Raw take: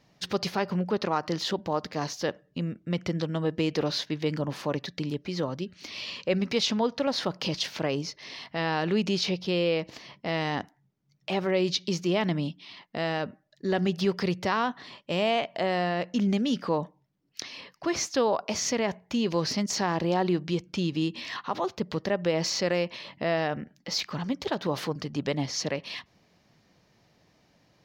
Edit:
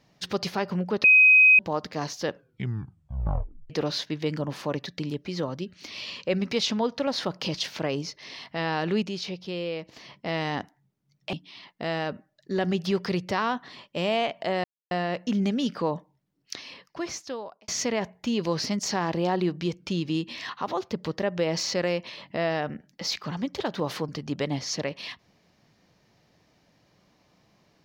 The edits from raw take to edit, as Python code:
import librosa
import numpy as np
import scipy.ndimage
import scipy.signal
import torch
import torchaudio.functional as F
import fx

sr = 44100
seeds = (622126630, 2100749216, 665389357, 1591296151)

y = fx.edit(x, sr, fx.bleep(start_s=1.04, length_s=0.55, hz=2520.0, db=-12.0),
    fx.tape_stop(start_s=2.29, length_s=1.41),
    fx.clip_gain(start_s=9.03, length_s=0.94, db=-6.0),
    fx.cut(start_s=11.33, length_s=1.14),
    fx.insert_silence(at_s=15.78, length_s=0.27),
    fx.fade_out_span(start_s=17.46, length_s=1.09), tone=tone)